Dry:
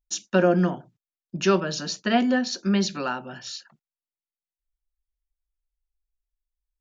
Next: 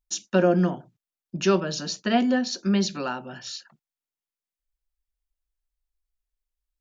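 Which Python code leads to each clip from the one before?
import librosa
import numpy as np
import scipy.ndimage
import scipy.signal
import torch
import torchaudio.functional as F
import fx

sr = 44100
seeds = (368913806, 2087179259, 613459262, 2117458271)

y = fx.dynamic_eq(x, sr, hz=1600.0, q=0.91, threshold_db=-39.0, ratio=4.0, max_db=-3)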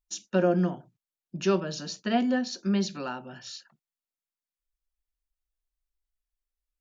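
y = fx.hpss(x, sr, part='percussive', gain_db=-3)
y = F.gain(torch.from_numpy(y), -3.5).numpy()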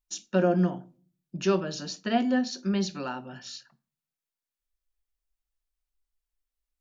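y = fx.room_shoebox(x, sr, seeds[0], volume_m3=310.0, walls='furnished', distance_m=0.32)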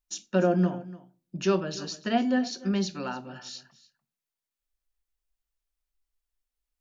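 y = x + 10.0 ** (-18.5 / 20.0) * np.pad(x, (int(293 * sr / 1000.0), 0))[:len(x)]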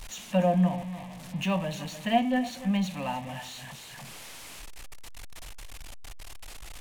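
y = x + 0.5 * 10.0 ** (-37.0 / 20.0) * np.sign(x)
y = fx.fixed_phaser(y, sr, hz=1400.0, stages=6)
y = np.interp(np.arange(len(y)), np.arange(len(y))[::2], y[::2])
y = F.gain(torch.from_numpy(y), 3.5).numpy()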